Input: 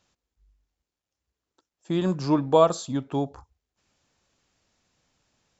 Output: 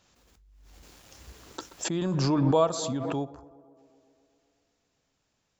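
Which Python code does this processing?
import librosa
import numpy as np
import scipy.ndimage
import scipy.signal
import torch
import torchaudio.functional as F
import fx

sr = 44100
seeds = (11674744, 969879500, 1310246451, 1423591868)

p1 = x + fx.echo_tape(x, sr, ms=128, feedback_pct=80, wet_db=-20, lp_hz=2000.0, drive_db=3.0, wow_cents=24, dry=0)
p2 = fx.pre_swell(p1, sr, db_per_s=20.0)
y = p2 * 10.0 ** (-5.5 / 20.0)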